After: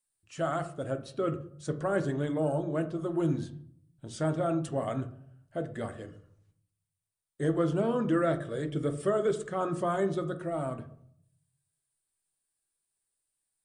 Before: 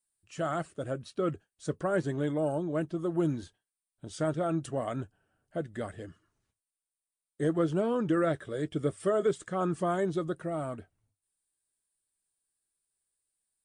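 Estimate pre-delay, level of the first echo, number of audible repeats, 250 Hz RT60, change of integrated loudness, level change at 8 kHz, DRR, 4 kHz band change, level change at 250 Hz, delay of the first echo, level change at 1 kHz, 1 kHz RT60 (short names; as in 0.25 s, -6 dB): 8 ms, none, none, 0.90 s, +0.5 dB, 0.0 dB, 8.5 dB, +0.5 dB, 0.0 dB, none, +1.0 dB, 0.60 s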